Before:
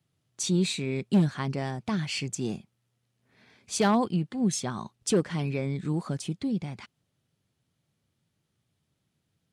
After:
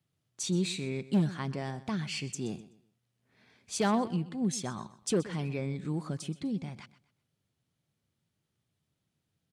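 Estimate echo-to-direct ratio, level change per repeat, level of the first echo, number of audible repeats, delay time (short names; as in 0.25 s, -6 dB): -16.5 dB, -10.5 dB, -17.0 dB, 2, 0.126 s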